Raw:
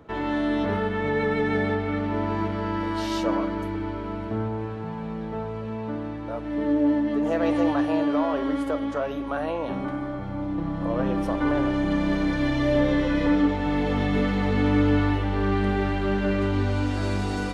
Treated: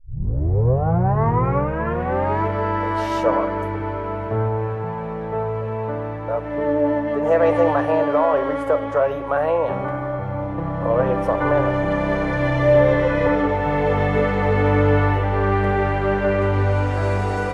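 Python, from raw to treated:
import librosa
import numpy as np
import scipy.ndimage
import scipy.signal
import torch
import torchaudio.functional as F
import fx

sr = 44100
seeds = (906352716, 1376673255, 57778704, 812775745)

y = fx.tape_start_head(x, sr, length_s=2.44)
y = fx.graphic_eq(y, sr, hz=(125, 250, 500, 1000, 2000, 4000), db=(11, -9, 11, 6, 6, -6))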